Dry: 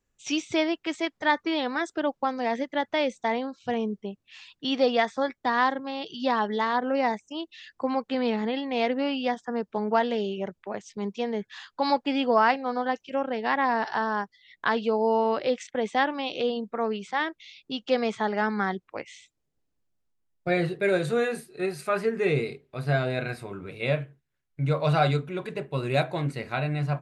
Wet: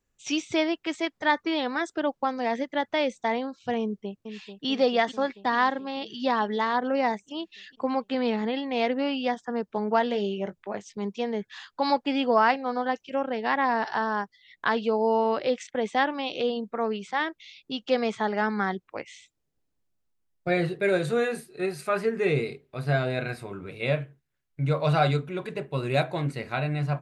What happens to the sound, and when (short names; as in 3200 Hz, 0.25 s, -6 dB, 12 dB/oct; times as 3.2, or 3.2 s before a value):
3.81–4.67 echo throw 0.44 s, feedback 70%, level -9 dB
10.04–10.88 doubler 20 ms -11 dB